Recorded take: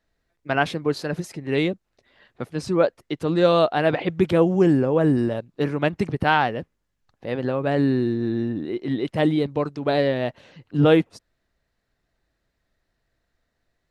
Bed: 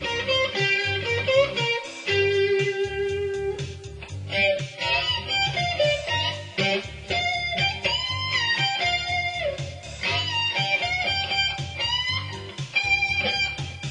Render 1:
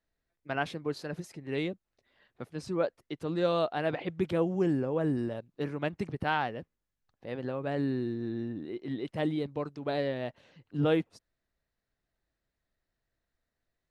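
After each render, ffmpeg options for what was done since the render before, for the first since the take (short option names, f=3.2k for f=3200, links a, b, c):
-af "volume=-10.5dB"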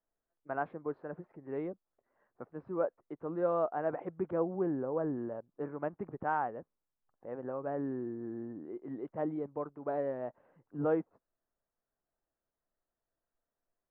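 -af "lowpass=f=1.3k:w=0.5412,lowpass=f=1.3k:w=1.3066,equalizer=f=66:w=0.31:g=-14"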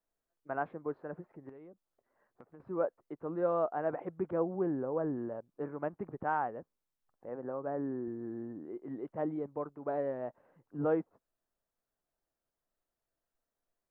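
-filter_complex "[0:a]asettb=1/sr,asplit=3[a][b][c];[a]atrim=end=1.494[d];[b]atrim=start=1.49:end=2.6,asetpts=PTS-STARTPTS,afade=t=in:d=0.004:c=qsin,afade=t=out:st=1.106:d=0.004:c=qsin,acompressor=threshold=-49dB:ratio=10:attack=3.2:release=140:knee=1:detection=peak[e];[c]atrim=start=2.596[f];[d][e]acrossfade=d=0.004:c1=hsin:c2=qsin[g];[g][f]acrossfade=d=0.004:c1=qsin:c2=hsin,asettb=1/sr,asplit=3[h][i][j];[h]atrim=end=7.294[k];[i]atrim=start=7.29:end=8.08,asetpts=PTS-STARTPTS,afade=t=in:d=0.004:c=qsin,afade=t=out:st=0.786:d=0.004:c=qsin,highpass=110,lowpass=2.1k[l];[j]atrim=start=8.076[m];[k][l]acrossfade=d=0.004:c1=hsin:c2=qsin[n];[n][m]acrossfade=d=0.004:c1=qsin:c2=hsin"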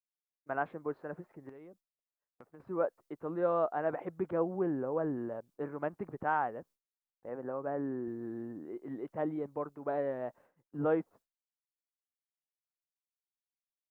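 -af "agate=range=-33dB:threshold=-56dB:ratio=3:detection=peak,highshelf=f=2.3k:g=9.5"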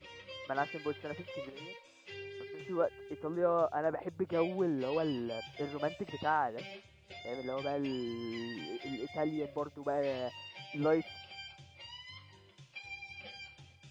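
-filter_complex "[1:a]volume=-24.5dB[a];[0:a][a]amix=inputs=2:normalize=0"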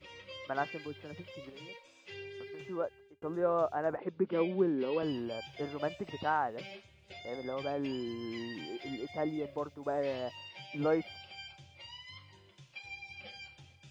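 -filter_complex "[0:a]asettb=1/sr,asplit=3[a][b][c];[a]atrim=end=0.844[d];[b]atrim=start=0.84:end=1.69,asetpts=PTS-STARTPTS,afade=t=in:d=0.004:c=qsin,afade=t=out:st=0.846:d=0.004:c=qsin,acrossover=split=330|3000[e][f][g];[f]acompressor=threshold=-51dB:ratio=3:attack=3.2:release=140:knee=2.83:detection=peak[h];[e][h][g]amix=inputs=3:normalize=0[i];[c]atrim=start=1.686[j];[d][i]acrossfade=d=0.004:c1=hsin:c2=qsin[k];[k][j]acrossfade=d=0.004:c1=qsin:c2=hsin,asettb=1/sr,asplit=3[l][m][n];[l]atrim=end=3.974[o];[m]atrim=start=3.97:end=5.03,asetpts=PTS-STARTPTS,afade=t=in:d=0.004:c=qsin,afade=t=out:st=1.056:d=0.004:c=qsin,highpass=f=160:w=0.5412,highpass=f=160:w=1.3066,equalizer=f=210:t=q:w=4:g=8,equalizer=f=400:t=q:w=4:g=5,equalizer=f=700:t=q:w=4:g=-8,lowpass=f=4.4k:w=0.5412,lowpass=f=4.4k:w=1.3066[p];[n]atrim=start=5.026[q];[o][p]acrossfade=d=0.004:c1=hsin:c2=qsin[r];[r][q]acrossfade=d=0.004:c1=qsin:c2=hsin,asplit=2[s][t];[s]atrim=end=3.22,asetpts=PTS-STARTPTS,afade=t=out:st=2.6:d=0.62[u];[t]atrim=start=3.22,asetpts=PTS-STARTPTS,afade=t=in:d=0.004:c=hsin[v];[u][v]concat=n=2:v=0:a=1"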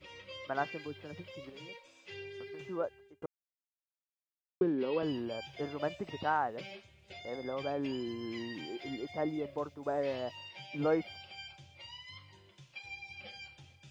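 -filter_complex "[0:a]asplit=3[a][b][c];[a]atrim=end=3.26,asetpts=PTS-STARTPTS,afade=t=out:st=3.256:d=0.004:c=hsin[d];[b]atrim=start=3.26:end=4.61,asetpts=PTS-STARTPTS,volume=0[e];[c]atrim=start=4.61,asetpts=PTS-STARTPTS,afade=t=in:d=0.004:c=hsin[f];[d][e][f]concat=n=3:v=0:a=1"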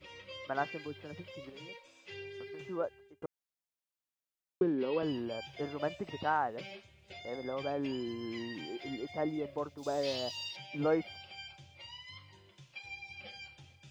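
-filter_complex "[0:a]asplit=3[a][b][c];[a]afade=t=out:st=9.77:d=0.02[d];[b]highshelf=f=2.9k:t=q:w=1.5:g=13.5,afade=t=in:st=9.77:d=0.02,afade=t=out:st=10.55:d=0.02[e];[c]afade=t=in:st=10.55:d=0.02[f];[d][e][f]amix=inputs=3:normalize=0"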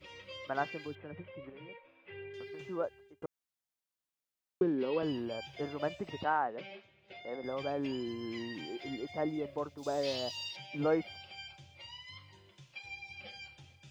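-filter_complex "[0:a]asettb=1/sr,asplit=3[a][b][c];[a]atrim=end=0.954[d];[b]atrim=start=0.95:end=2.34,asetpts=PTS-STARTPTS,afade=t=in:d=0.004:c=qsin,afade=t=out:st=1.386:d=0.004:c=qsin,lowpass=f=2.4k:w=0.5412,lowpass=f=2.4k:w=1.3066[e];[c]atrim=start=2.336[f];[d][e]acrossfade=d=0.004:c1=hsin:c2=qsin[g];[g][f]acrossfade=d=0.004:c1=qsin:c2=hsin,asettb=1/sr,asplit=3[h][i][j];[h]atrim=end=6.244[k];[i]atrim=start=6.24:end=7.44,asetpts=PTS-STARTPTS,afade=t=in:d=0.004:c=qsin,afade=t=out:st=1.196:d=0.004:c=qsin,highpass=180,lowpass=3.1k[l];[j]atrim=start=7.436[m];[k][l]acrossfade=d=0.004:c1=hsin:c2=qsin[n];[n][m]acrossfade=d=0.004:c1=qsin:c2=hsin"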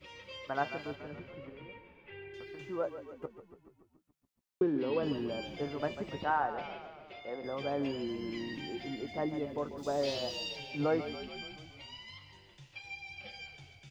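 -filter_complex "[0:a]asplit=2[a][b];[b]adelay=14,volume=-12dB[c];[a][c]amix=inputs=2:normalize=0,asplit=9[d][e][f][g][h][i][j][k][l];[e]adelay=142,afreqshift=-32,volume=-11.5dB[m];[f]adelay=284,afreqshift=-64,volume=-15.4dB[n];[g]adelay=426,afreqshift=-96,volume=-19.3dB[o];[h]adelay=568,afreqshift=-128,volume=-23.1dB[p];[i]adelay=710,afreqshift=-160,volume=-27dB[q];[j]adelay=852,afreqshift=-192,volume=-30.9dB[r];[k]adelay=994,afreqshift=-224,volume=-34.8dB[s];[l]adelay=1136,afreqshift=-256,volume=-38.6dB[t];[d][m][n][o][p][q][r][s][t]amix=inputs=9:normalize=0"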